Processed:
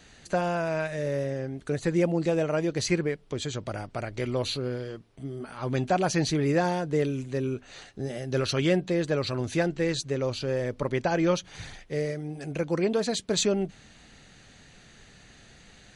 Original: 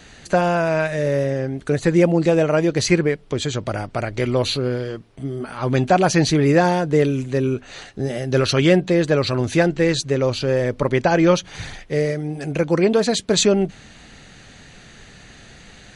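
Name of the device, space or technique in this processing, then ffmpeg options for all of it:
exciter from parts: -filter_complex "[0:a]asplit=2[link_01][link_02];[link_02]highpass=2700,asoftclip=type=tanh:threshold=-14.5dB,volume=-13.5dB[link_03];[link_01][link_03]amix=inputs=2:normalize=0,volume=-9dB"

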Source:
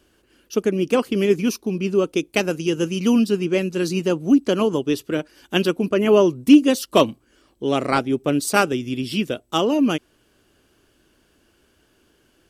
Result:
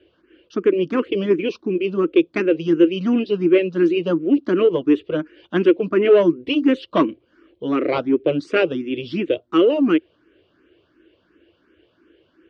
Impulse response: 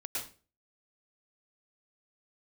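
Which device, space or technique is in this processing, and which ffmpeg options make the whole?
barber-pole phaser into a guitar amplifier: -filter_complex "[0:a]asplit=2[link_01][link_02];[link_02]afreqshift=2.8[link_03];[link_01][link_03]amix=inputs=2:normalize=1,asoftclip=type=tanh:threshold=-12.5dB,highpass=82,equalizer=frequency=130:width_type=q:width=4:gain=-8,equalizer=frequency=220:width_type=q:width=4:gain=-6,equalizer=frequency=330:width_type=q:width=4:gain=9,equalizer=frequency=500:width_type=q:width=4:gain=5,equalizer=frequency=810:width_type=q:width=4:gain=-9,lowpass=frequency=3400:width=0.5412,lowpass=frequency=3400:width=1.3066,volume=4dB"

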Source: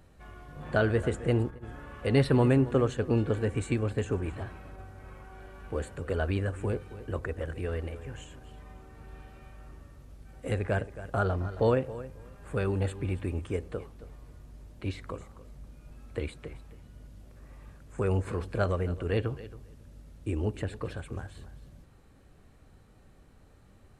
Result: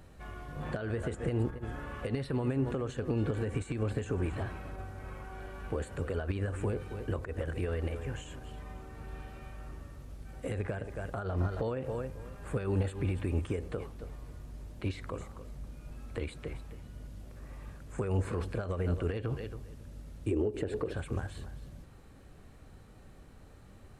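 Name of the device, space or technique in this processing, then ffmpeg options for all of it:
de-esser from a sidechain: -filter_complex "[0:a]asettb=1/sr,asplit=3[link_01][link_02][link_03];[link_01]atrim=end=20.314[link_04];[link_02]atrim=start=20.31:end=20.94,asetpts=PTS-STARTPTS,afade=type=in:duration=0.004:curve=qsin,afade=type=out:start_time=0.626:duration=0.004:curve=qsin,equalizer=frequency=400:width=1.4:gain=15[link_05];[link_03]atrim=start=20.936[link_06];[link_04][link_05]acrossfade=duration=0.004:curve1=hsin:curve2=qsin[link_07];[link_07][link_06]acrossfade=duration=0.004:curve1=qsin:curve2=hsin,asplit=2[link_08][link_09];[link_09]highpass=frequency=4800:poles=1,apad=whole_len=1058035[link_10];[link_08][link_10]sidechaincompress=threshold=-51dB:ratio=20:attack=3.1:release=98,volume=3.5dB"

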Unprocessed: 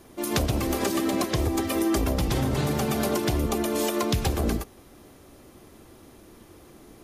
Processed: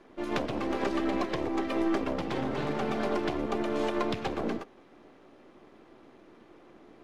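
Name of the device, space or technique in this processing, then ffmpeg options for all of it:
crystal radio: -af "highpass=230,lowpass=2700,aeval=exprs='if(lt(val(0),0),0.447*val(0),val(0))':channel_layout=same"

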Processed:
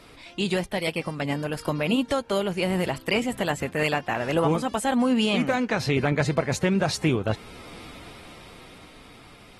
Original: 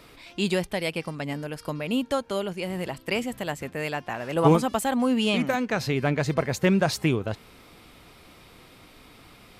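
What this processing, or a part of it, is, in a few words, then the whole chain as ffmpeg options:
low-bitrate web radio: -af "dynaudnorm=framelen=390:gausssize=9:maxgain=11dB,alimiter=limit=-13dB:level=0:latency=1:release=463" -ar 48000 -c:a aac -b:a 32k

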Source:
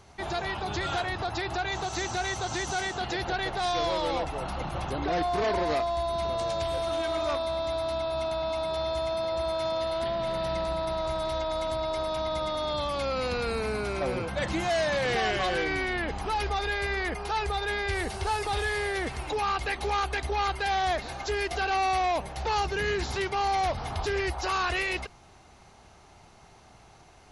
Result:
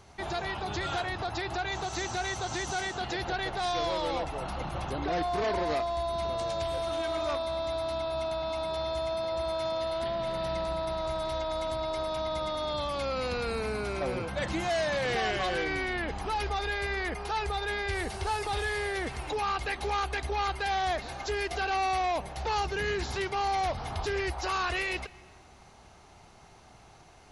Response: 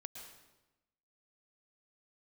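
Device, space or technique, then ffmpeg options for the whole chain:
compressed reverb return: -filter_complex "[0:a]asplit=2[link_01][link_02];[1:a]atrim=start_sample=2205[link_03];[link_02][link_03]afir=irnorm=-1:irlink=0,acompressor=threshold=-42dB:ratio=6,volume=-4dB[link_04];[link_01][link_04]amix=inputs=2:normalize=0,volume=-3dB"

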